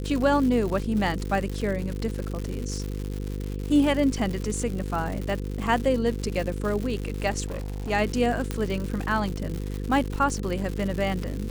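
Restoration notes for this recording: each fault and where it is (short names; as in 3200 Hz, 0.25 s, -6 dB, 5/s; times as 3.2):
buzz 50 Hz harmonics 10 -31 dBFS
crackle 190/s -30 dBFS
7.46–7.91 clipped -28 dBFS
8.51 pop -14 dBFS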